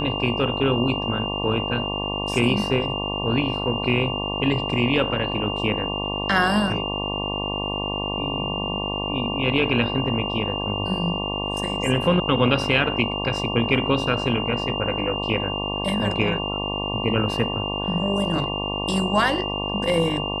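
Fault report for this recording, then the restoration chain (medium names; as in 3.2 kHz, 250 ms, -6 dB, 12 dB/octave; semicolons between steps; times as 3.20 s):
buzz 50 Hz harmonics 23 -29 dBFS
whine 2.8 kHz -28 dBFS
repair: de-hum 50 Hz, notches 23; band-stop 2.8 kHz, Q 30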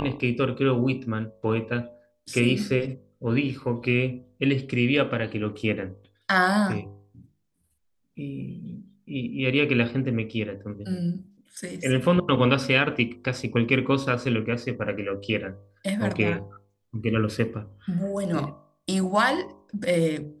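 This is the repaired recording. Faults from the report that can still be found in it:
nothing left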